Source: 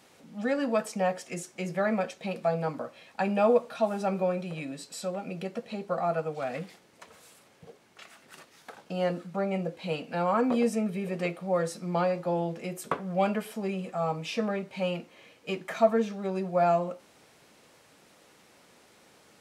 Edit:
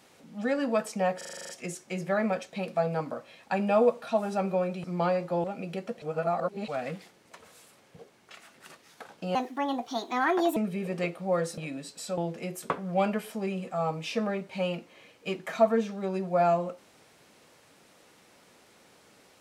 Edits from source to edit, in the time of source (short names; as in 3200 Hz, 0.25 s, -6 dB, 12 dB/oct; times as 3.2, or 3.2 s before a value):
1.17 stutter 0.04 s, 9 plays
4.52–5.12 swap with 11.79–12.39
5.7–6.36 reverse
9.03–10.78 speed 144%